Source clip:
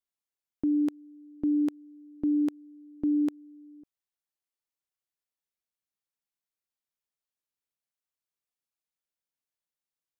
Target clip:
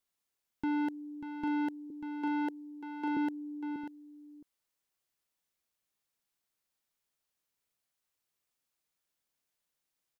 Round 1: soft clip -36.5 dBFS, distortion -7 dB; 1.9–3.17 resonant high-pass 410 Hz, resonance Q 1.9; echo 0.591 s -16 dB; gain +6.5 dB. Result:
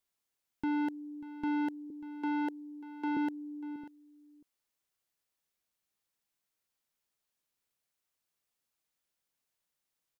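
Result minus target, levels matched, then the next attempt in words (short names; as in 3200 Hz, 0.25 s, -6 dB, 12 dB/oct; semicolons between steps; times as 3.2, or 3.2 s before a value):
echo-to-direct -7 dB
soft clip -36.5 dBFS, distortion -7 dB; 1.9–3.17 resonant high-pass 410 Hz, resonance Q 1.9; echo 0.591 s -9 dB; gain +6.5 dB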